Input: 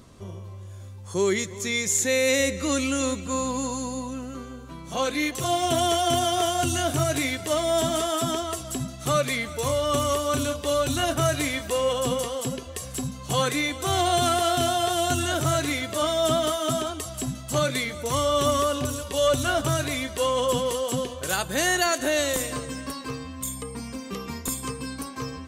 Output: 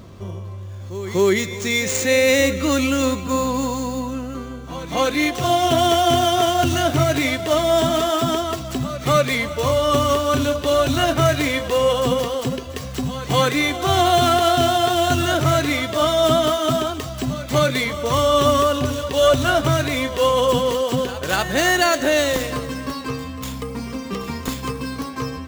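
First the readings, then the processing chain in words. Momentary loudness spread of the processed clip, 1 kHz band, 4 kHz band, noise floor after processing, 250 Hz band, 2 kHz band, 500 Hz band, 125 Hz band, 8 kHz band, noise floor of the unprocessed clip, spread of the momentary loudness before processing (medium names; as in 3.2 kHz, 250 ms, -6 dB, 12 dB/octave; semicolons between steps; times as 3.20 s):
12 LU, +6.5 dB, +5.5 dB, -32 dBFS, +6.5 dB, +6.0 dB, +6.5 dB, +6.5 dB, -0.5 dB, -40 dBFS, 12 LU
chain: median filter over 5 samples; pre-echo 244 ms -14 dB; trim +6.5 dB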